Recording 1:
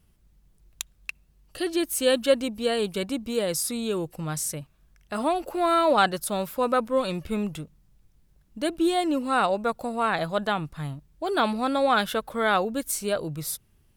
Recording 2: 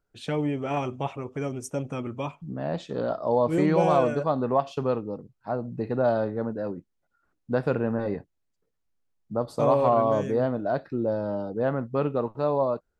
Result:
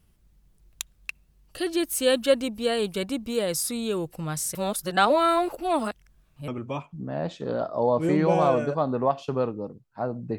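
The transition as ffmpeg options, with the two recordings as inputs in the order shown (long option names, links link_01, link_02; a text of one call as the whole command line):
ffmpeg -i cue0.wav -i cue1.wav -filter_complex "[0:a]apad=whole_dur=10.38,atrim=end=10.38,asplit=2[link_01][link_02];[link_01]atrim=end=4.552[link_03];[link_02]atrim=start=4.548:end=6.482,asetpts=PTS-STARTPTS,areverse[link_04];[1:a]atrim=start=1.968:end=5.87[link_05];[link_03][link_04]acrossfade=duration=0.004:curve1=hsin:curve2=hsin[link_06];[link_06][link_05]acrossfade=duration=0.004:curve1=hsin:curve2=hsin" out.wav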